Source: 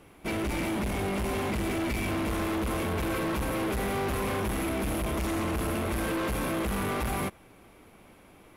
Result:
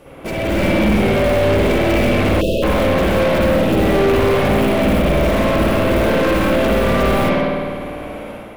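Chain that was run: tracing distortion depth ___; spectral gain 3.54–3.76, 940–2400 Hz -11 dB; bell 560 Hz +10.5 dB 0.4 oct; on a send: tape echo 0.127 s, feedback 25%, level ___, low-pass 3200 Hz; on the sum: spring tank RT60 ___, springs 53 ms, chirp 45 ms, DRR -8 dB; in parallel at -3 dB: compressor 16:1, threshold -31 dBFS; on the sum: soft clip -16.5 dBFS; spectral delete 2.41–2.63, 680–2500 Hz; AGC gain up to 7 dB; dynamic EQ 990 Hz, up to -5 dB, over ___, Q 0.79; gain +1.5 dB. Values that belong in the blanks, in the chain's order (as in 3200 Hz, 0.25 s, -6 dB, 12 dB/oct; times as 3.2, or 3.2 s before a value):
0.1 ms, -6 dB, 1.4 s, -30 dBFS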